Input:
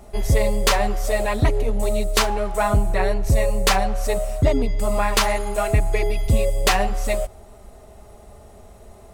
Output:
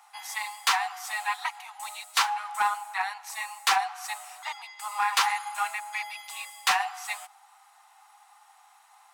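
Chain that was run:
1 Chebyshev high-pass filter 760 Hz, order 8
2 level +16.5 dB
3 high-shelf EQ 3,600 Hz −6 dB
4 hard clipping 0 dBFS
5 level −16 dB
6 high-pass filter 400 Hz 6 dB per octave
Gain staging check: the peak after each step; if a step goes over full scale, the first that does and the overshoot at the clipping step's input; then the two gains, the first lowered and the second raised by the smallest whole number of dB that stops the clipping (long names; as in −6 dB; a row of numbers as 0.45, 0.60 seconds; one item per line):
−6.5, +10.0, +7.5, 0.0, −16.0, −13.0 dBFS
step 2, 7.5 dB
step 2 +8.5 dB, step 5 −8 dB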